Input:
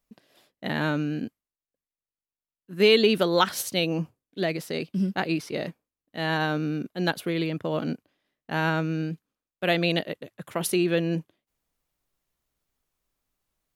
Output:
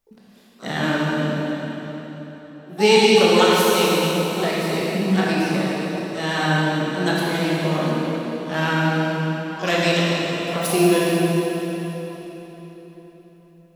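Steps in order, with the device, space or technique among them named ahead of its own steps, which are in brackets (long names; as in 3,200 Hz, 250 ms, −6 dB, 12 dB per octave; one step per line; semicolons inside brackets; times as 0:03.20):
shimmer-style reverb (pitch-shifted copies added +12 semitones −10 dB; convolution reverb RT60 4.1 s, pre-delay 13 ms, DRR −6 dB)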